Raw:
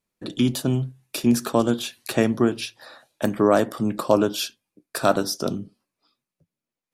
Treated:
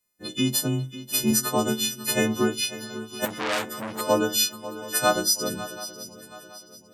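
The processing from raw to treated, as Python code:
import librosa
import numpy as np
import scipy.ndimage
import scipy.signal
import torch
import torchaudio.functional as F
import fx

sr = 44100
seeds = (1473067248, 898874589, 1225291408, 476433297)

y = fx.freq_snap(x, sr, grid_st=3)
y = fx.echo_swing(y, sr, ms=727, ratio=3, feedback_pct=37, wet_db=-15)
y = fx.transformer_sat(y, sr, knee_hz=4000.0, at=(3.25, 4.01))
y = y * 10.0 ** (-3.5 / 20.0)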